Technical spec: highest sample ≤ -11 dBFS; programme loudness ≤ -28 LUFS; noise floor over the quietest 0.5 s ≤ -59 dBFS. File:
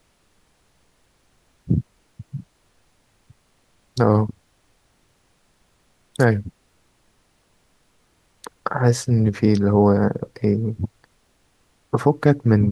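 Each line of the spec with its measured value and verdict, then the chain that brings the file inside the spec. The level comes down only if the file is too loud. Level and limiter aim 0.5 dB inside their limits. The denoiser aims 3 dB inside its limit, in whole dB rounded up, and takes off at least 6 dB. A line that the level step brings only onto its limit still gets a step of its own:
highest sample -2.0 dBFS: fail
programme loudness -20.5 LUFS: fail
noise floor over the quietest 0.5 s -62 dBFS: OK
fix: gain -8 dB; limiter -11.5 dBFS

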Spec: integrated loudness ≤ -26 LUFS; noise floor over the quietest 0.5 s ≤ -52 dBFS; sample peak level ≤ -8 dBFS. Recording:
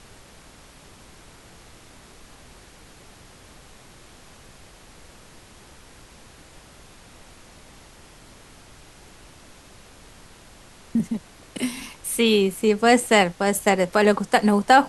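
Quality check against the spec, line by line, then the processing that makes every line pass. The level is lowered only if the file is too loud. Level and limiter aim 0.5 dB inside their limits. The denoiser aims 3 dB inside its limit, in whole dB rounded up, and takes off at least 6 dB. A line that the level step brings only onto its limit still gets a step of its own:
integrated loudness -20.5 LUFS: fail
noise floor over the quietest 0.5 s -48 dBFS: fail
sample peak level -1.5 dBFS: fail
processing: gain -6 dB; limiter -8.5 dBFS

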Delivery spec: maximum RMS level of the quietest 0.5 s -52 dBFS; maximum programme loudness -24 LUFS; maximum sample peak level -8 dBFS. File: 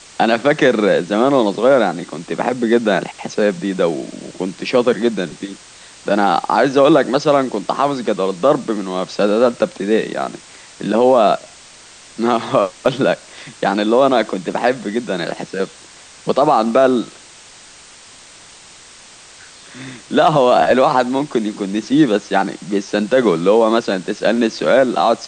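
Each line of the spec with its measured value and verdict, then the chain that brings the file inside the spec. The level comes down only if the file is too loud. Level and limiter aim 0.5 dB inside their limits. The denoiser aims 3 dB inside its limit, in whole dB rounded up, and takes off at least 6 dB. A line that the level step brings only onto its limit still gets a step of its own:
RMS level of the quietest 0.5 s -42 dBFS: fail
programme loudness -16.0 LUFS: fail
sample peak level -2.0 dBFS: fail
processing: denoiser 6 dB, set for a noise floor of -42 dBFS; gain -8.5 dB

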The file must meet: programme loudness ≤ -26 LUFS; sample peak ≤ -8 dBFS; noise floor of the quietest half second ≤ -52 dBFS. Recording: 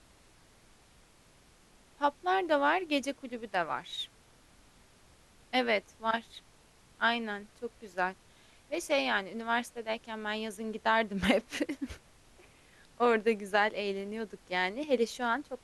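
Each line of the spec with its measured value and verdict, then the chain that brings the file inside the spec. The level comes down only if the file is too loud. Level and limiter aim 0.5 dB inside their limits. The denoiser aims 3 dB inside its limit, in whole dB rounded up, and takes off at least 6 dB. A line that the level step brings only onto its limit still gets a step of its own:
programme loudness -32.0 LUFS: OK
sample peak -12.0 dBFS: OK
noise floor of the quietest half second -61 dBFS: OK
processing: none

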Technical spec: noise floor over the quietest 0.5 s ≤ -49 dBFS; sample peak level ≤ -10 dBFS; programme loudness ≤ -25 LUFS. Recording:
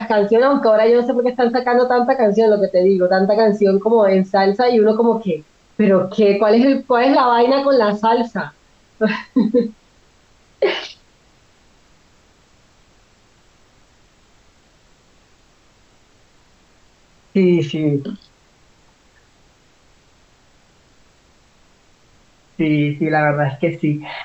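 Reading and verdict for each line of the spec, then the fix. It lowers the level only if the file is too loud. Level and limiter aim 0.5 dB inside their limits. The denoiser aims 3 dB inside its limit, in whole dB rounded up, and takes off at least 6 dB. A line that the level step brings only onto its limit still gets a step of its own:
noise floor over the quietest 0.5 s -53 dBFS: OK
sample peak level -5.5 dBFS: fail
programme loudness -15.5 LUFS: fail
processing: gain -10 dB

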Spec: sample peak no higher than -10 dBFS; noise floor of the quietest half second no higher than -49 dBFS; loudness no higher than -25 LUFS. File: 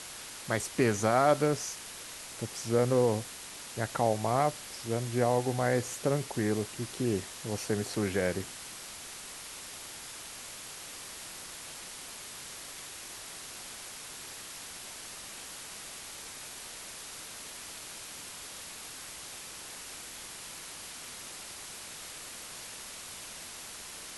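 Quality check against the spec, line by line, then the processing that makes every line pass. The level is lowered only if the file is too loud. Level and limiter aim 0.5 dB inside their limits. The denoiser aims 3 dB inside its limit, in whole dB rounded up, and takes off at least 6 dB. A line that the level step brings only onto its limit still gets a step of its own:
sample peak -12.5 dBFS: OK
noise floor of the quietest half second -45 dBFS: fail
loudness -34.5 LUFS: OK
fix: denoiser 7 dB, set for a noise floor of -45 dBFS

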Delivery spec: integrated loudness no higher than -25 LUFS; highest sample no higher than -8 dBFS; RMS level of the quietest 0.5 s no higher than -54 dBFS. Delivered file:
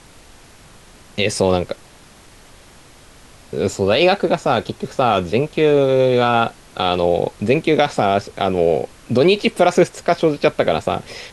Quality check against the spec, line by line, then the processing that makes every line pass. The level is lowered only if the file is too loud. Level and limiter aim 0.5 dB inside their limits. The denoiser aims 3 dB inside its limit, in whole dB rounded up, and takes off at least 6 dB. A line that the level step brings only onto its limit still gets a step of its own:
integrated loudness -17.5 LUFS: fail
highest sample -3.5 dBFS: fail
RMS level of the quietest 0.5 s -45 dBFS: fail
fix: denoiser 6 dB, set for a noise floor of -45 dBFS; gain -8 dB

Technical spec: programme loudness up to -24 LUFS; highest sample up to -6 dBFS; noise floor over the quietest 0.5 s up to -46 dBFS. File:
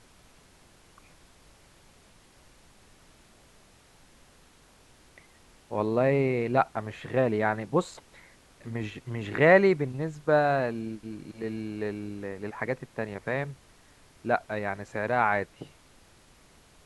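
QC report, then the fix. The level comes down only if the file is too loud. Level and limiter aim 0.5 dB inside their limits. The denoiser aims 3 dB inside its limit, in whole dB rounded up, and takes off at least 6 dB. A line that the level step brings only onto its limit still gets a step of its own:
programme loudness -28.0 LUFS: OK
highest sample -6.5 dBFS: OK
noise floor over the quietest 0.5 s -58 dBFS: OK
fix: none

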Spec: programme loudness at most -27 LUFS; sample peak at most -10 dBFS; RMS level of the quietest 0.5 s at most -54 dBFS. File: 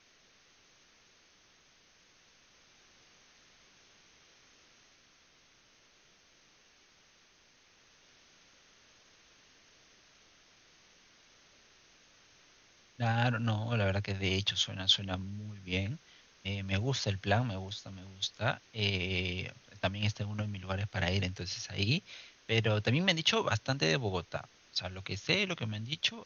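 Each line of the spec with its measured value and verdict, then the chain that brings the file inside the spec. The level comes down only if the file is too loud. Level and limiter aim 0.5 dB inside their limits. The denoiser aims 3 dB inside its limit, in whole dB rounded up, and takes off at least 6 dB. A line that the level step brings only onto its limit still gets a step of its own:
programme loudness -33.0 LUFS: OK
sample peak -11.5 dBFS: OK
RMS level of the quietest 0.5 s -65 dBFS: OK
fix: none

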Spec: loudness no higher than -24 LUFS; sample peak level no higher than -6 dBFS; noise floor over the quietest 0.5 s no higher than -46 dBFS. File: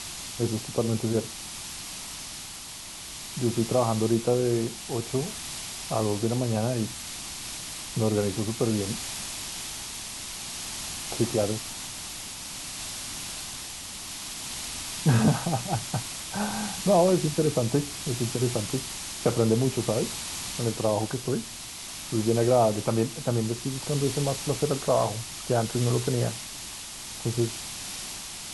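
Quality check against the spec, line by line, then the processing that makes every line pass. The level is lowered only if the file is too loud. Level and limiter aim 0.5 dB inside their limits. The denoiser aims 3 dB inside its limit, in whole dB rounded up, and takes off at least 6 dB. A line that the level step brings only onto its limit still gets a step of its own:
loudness -28.5 LUFS: OK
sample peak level -9.0 dBFS: OK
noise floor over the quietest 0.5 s -40 dBFS: fail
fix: denoiser 9 dB, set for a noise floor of -40 dBFS

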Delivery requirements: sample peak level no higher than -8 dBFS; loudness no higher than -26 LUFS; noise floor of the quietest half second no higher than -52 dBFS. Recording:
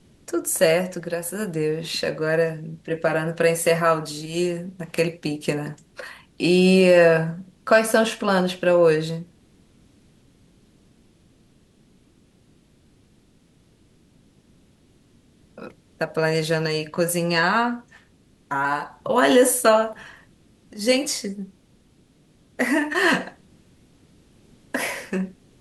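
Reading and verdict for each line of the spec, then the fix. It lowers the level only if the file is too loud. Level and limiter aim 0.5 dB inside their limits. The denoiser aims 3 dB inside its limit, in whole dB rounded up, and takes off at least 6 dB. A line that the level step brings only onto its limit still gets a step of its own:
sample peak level -4.5 dBFS: fail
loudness -21.5 LUFS: fail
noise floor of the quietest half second -57 dBFS: OK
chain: gain -5 dB

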